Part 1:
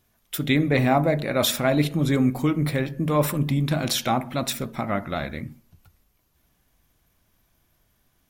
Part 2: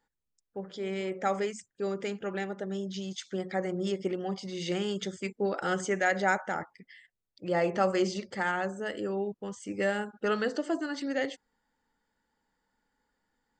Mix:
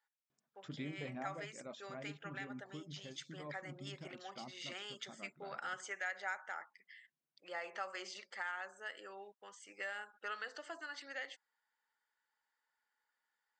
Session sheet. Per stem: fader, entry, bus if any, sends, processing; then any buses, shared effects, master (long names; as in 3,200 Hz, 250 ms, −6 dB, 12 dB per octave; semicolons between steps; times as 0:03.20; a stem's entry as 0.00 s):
−13.0 dB, 0.30 s, no send, brick-wall band-pass 120–7,500 Hz; reverb reduction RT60 0.68 s; automatic ducking −13 dB, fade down 1.85 s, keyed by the second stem
0.0 dB, 0.00 s, no send, high-pass filter 1,400 Hz 12 dB per octave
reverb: not used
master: high-shelf EQ 2,900 Hz −11 dB; downward compressor 2 to 1, threshold −42 dBFS, peak gain reduction 8 dB